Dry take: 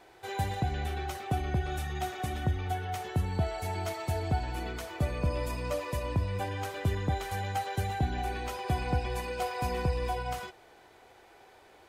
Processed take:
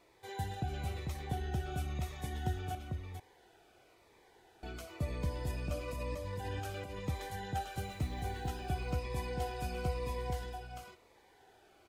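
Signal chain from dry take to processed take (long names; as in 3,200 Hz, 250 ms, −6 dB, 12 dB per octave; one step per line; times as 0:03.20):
0:02.75–0:04.63: fill with room tone
0:05.88–0:06.99: compressor whose output falls as the input rises −35 dBFS, ratio −1
0:07.76–0:08.56: floating-point word with a short mantissa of 4 bits
single-tap delay 446 ms −4 dB
phaser whose notches keep moving one way falling 1 Hz
level −6.5 dB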